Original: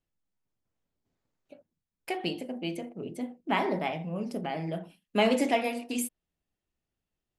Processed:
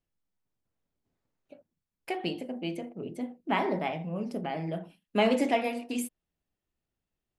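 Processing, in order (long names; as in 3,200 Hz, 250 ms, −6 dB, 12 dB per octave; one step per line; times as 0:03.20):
high-shelf EQ 4,000 Hz −5.5 dB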